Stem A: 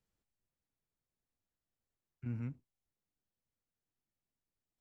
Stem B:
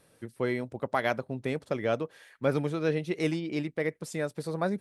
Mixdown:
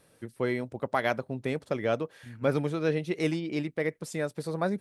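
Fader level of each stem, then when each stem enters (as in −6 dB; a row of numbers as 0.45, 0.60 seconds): −6.5, +0.5 decibels; 0.00, 0.00 seconds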